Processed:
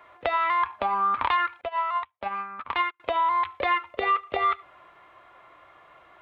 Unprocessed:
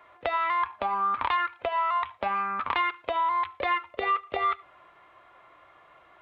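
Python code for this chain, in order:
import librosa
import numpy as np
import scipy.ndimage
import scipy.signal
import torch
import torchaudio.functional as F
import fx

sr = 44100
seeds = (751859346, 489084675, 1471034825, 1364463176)

y = fx.upward_expand(x, sr, threshold_db=-46.0, expansion=2.5, at=(1.61, 3.0))
y = y * 10.0 ** (2.5 / 20.0)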